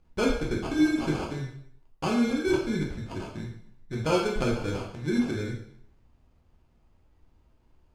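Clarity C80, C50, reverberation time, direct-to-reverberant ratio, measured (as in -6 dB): 8.0 dB, 5.0 dB, 0.65 s, -2.5 dB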